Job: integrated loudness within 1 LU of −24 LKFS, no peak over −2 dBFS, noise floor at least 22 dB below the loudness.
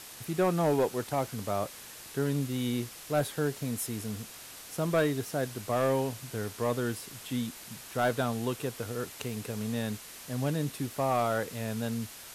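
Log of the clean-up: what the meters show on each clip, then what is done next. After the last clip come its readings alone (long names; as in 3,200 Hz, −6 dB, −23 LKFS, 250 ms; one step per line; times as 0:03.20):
share of clipped samples 0.5%; peaks flattened at −19.5 dBFS; background noise floor −47 dBFS; target noise floor −54 dBFS; integrated loudness −32.0 LKFS; sample peak −19.5 dBFS; target loudness −24.0 LKFS
→ clipped peaks rebuilt −19.5 dBFS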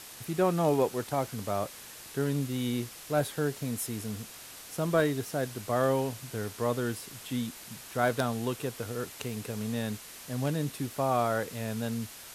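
share of clipped samples 0.0%; background noise floor −47 dBFS; target noise floor −54 dBFS
→ noise reduction from a noise print 7 dB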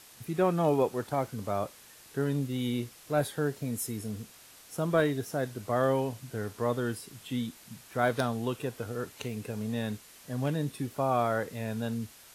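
background noise floor −54 dBFS; integrated loudness −32.0 LKFS; sample peak −11.5 dBFS; target loudness −24.0 LKFS
→ level +8 dB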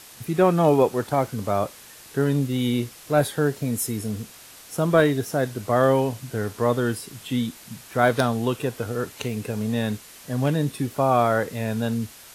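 integrated loudness −24.0 LKFS; sample peak −3.5 dBFS; background noise floor −46 dBFS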